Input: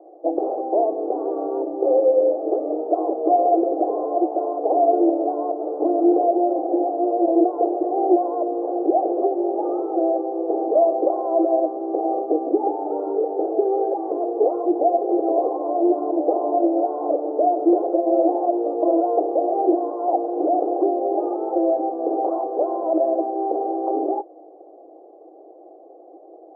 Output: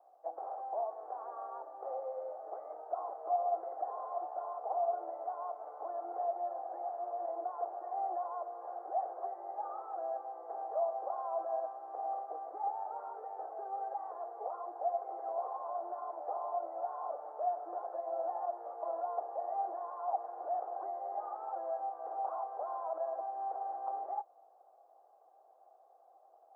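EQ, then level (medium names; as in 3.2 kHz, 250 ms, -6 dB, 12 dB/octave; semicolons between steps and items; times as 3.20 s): high-pass 1.1 kHz 24 dB/octave; +1.0 dB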